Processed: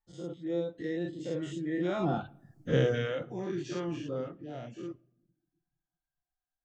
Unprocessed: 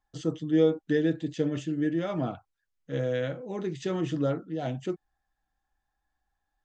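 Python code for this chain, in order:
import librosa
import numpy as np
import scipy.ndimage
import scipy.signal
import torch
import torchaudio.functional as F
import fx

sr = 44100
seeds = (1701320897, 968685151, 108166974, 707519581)

y = fx.spec_dilate(x, sr, span_ms=120)
y = fx.doppler_pass(y, sr, speed_mps=21, closest_m=4.5, pass_at_s=2.62)
y = fx.room_shoebox(y, sr, seeds[0], volume_m3=3300.0, walls='furnished', distance_m=0.88)
y = fx.dereverb_blind(y, sr, rt60_s=0.68)
y = y * 10.0 ** (5.5 / 20.0)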